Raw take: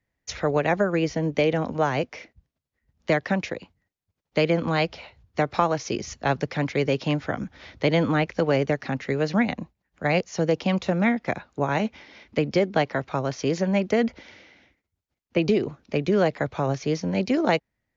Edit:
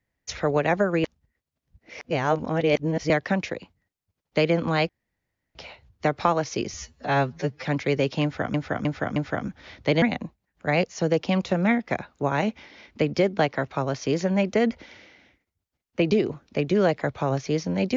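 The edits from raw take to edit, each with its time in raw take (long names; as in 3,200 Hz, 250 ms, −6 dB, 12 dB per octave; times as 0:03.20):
0:01.04–0:03.10: reverse
0:04.89: splice in room tone 0.66 s
0:06.08–0:06.53: time-stretch 2×
0:07.12–0:07.43: repeat, 4 plays
0:07.98–0:09.39: remove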